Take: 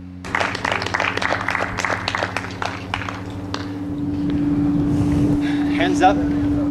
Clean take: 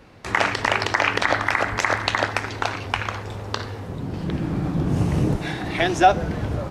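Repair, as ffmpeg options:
ffmpeg -i in.wav -af "bandreject=frequency=90.5:width_type=h:width=4,bandreject=frequency=181:width_type=h:width=4,bandreject=frequency=271.5:width_type=h:width=4,bandreject=frequency=290:width=30" out.wav

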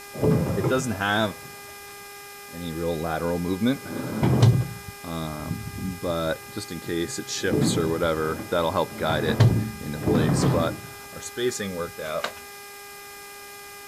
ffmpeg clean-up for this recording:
ffmpeg -i in.wav -af "adeclick=threshold=4,bandreject=frequency=404.5:width_type=h:width=4,bandreject=frequency=809:width_type=h:width=4,bandreject=frequency=1213.5:width_type=h:width=4,bandreject=frequency=1618:width_type=h:width=4,bandreject=frequency=2022.5:width_type=h:width=4,bandreject=frequency=2427:width_type=h:width=4,bandreject=frequency=5200:width=30,afftdn=noise_reduction=28:noise_floor=-42" out.wav

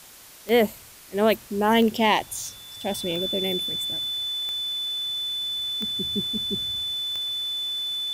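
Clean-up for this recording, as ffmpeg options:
ffmpeg -i in.wav -af "adeclick=threshold=4,bandreject=frequency=3500:width=30,afwtdn=0.005" out.wav

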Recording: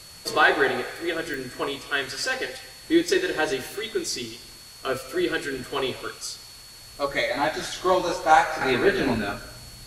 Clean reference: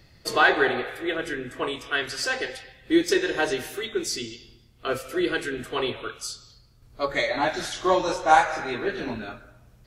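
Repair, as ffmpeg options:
ffmpeg -i in.wav -af "adeclick=threshold=4,bandreject=frequency=4400:width=30,afwtdn=0.005,asetnsamples=nb_out_samples=441:pad=0,asendcmd='8.61 volume volume -7.5dB',volume=0dB" out.wav

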